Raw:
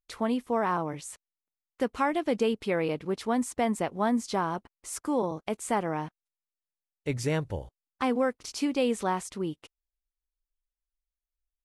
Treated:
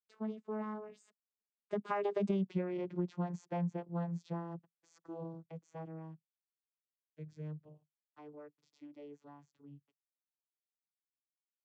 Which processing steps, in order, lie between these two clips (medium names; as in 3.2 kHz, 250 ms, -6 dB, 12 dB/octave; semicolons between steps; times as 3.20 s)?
vocoder on a note that slides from G#3, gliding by -7 st; Doppler pass-by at 2.42 s, 18 m/s, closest 2 m; compression 8:1, threshold -45 dBFS, peak gain reduction 20 dB; trim +13.5 dB